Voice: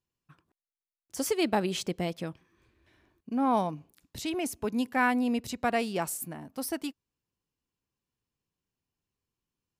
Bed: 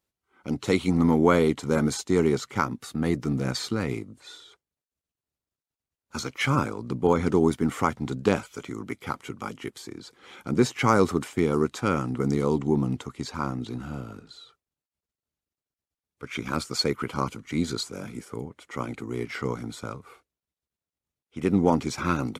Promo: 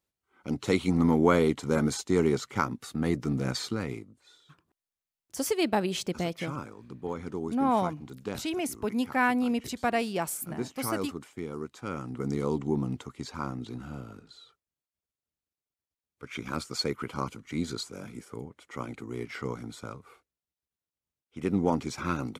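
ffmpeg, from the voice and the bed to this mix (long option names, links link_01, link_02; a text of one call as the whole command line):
ffmpeg -i stem1.wav -i stem2.wav -filter_complex "[0:a]adelay=4200,volume=0.5dB[link_01];[1:a]volume=6dB,afade=type=out:start_time=3.6:duration=0.64:silence=0.281838,afade=type=in:start_time=11.76:duration=0.67:silence=0.375837[link_02];[link_01][link_02]amix=inputs=2:normalize=0" out.wav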